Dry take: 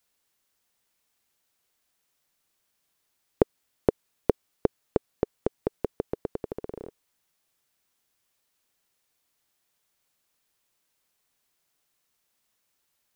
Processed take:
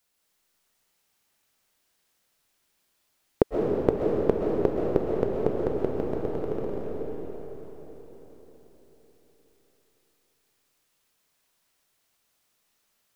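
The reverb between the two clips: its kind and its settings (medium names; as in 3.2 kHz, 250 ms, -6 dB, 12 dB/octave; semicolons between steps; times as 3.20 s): algorithmic reverb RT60 4.6 s, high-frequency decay 0.85×, pre-delay 90 ms, DRR -3 dB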